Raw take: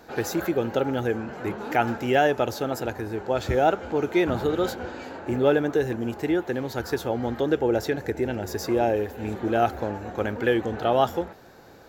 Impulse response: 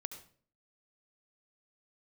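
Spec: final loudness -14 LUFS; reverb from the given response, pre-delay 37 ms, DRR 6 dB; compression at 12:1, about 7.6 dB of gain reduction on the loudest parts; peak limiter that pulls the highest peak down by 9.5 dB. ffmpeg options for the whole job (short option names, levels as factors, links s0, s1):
-filter_complex "[0:a]acompressor=threshold=0.0708:ratio=12,alimiter=limit=0.0794:level=0:latency=1,asplit=2[s0][s1];[1:a]atrim=start_sample=2205,adelay=37[s2];[s1][s2]afir=irnorm=-1:irlink=0,volume=0.631[s3];[s0][s3]amix=inputs=2:normalize=0,volume=7.5"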